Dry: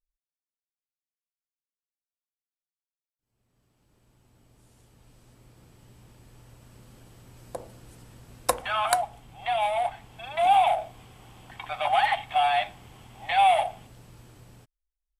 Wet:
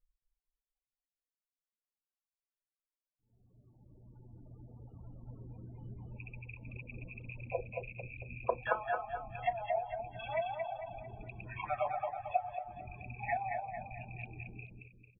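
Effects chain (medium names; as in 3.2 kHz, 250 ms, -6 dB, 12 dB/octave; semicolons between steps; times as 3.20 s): rattle on loud lows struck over -46 dBFS, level -25 dBFS; flange 1.9 Hz, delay 7.7 ms, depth 3.4 ms, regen -47%; hum notches 50/100/150/200/250/300/350/400/450 Hz; reverb removal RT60 1.8 s; compression 1.5:1, threshold -57 dBFS, peak gain reduction 13.5 dB; loudest bins only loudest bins 16; low-pass that closes with the level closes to 330 Hz, closed at -37.5 dBFS; distance through air 430 m; feedback delay 224 ms, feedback 43%, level -4.5 dB; trim +13.5 dB; AAC 16 kbps 24 kHz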